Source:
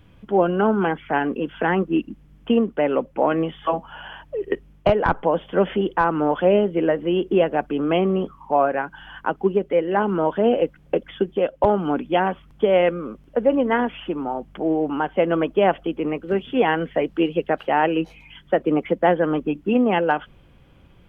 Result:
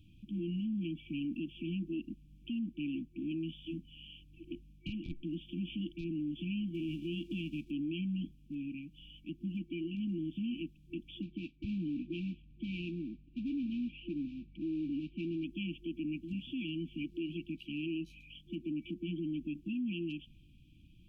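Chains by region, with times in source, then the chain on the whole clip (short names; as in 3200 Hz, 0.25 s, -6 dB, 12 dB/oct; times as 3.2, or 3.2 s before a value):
6.74–7.69 spectral whitening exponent 0.6 + LPF 2100 Hz 6 dB/oct + mismatched tape noise reduction encoder only
11.22–15.44 modulation noise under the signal 14 dB + LPF 2500 Hz 24 dB/oct
whole clip: FFT band-reject 350–2300 Hz; limiter -23 dBFS; gain -8 dB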